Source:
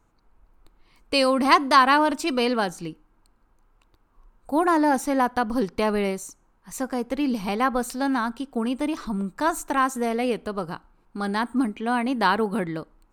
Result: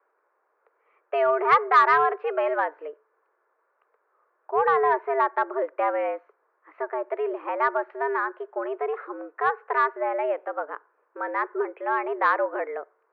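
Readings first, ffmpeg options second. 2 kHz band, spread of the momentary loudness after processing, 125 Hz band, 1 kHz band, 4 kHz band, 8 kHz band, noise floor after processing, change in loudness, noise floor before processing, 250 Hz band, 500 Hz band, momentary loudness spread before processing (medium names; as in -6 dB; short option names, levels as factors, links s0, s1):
-0.5 dB, 14 LU, under -20 dB, 0.0 dB, under -15 dB, under -25 dB, -72 dBFS, -1.5 dB, -64 dBFS, -15.5 dB, +1.0 dB, 13 LU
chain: -af "highpass=f=290:t=q:w=0.5412,highpass=f=290:t=q:w=1.307,lowpass=f=2000:t=q:w=0.5176,lowpass=f=2000:t=q:w=0.7071,lowpass=f=2000:t=q:w=1.932,afreqshift=130,acontrast=45,volume=0.531"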